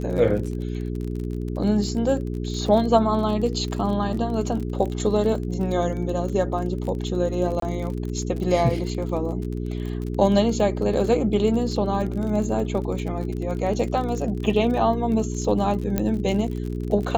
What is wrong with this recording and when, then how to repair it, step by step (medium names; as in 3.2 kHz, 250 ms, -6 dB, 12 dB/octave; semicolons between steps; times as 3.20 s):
crackle 40 per s -30 dBFS
hum 60 Hz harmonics 7 -28 dBFS
7.60–7.62 s: dropout 23 ms
15.98 s: pop -9 dBFS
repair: de-click; de-hum 60 Hz, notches 7; interpolate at 7.60 s, 23 ms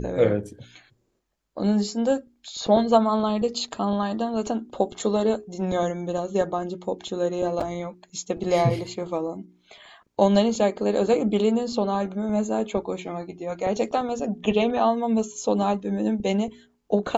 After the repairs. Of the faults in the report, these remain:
nothing left